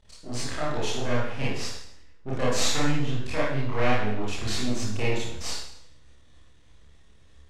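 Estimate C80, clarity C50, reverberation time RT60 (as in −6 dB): 3.5 dB, 0.0 dB, 0.70 s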